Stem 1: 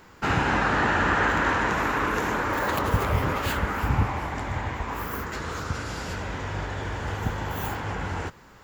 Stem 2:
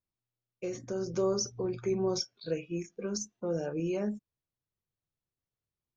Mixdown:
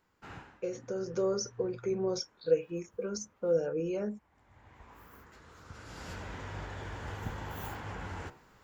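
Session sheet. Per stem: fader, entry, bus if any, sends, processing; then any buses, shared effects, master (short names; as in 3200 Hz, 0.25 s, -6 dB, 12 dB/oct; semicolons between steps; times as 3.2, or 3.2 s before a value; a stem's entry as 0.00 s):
5.55 s -23 dB -> 6.08 s -10 dB, 0.00 s, no send, de-hum 69.17 Hz, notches 40; auto duck -19 dB, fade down 0.25 s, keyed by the second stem
-4.0 dB, 0.00 s, no send, small resonant body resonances 490/1400 Hz, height 13 dB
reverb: off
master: dry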